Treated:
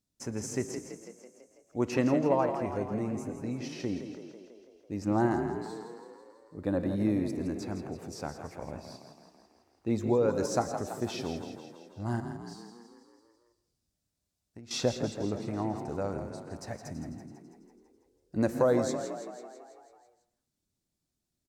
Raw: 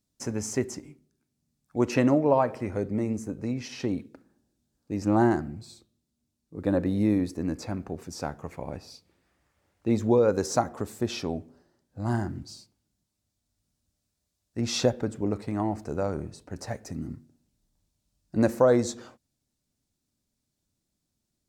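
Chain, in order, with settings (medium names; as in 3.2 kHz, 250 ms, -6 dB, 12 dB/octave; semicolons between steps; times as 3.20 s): 12.20–14.71 s: compression 10:1, threshold -41 dBFS, peak gain reduction 17.5 dB; frequency-shifting echo 165 ms, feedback 61%, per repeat +30 Hz, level -9 dB; reverberation RT60 0.40 s, pre-delay 107 ms, DRR 14 dB; trim -5 dB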